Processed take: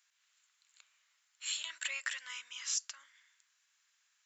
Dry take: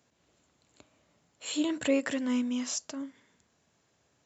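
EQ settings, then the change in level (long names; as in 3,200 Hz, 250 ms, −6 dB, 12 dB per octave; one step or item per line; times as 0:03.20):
high-pass filter 1,400 Hz 24 dB per octave
0.0 dB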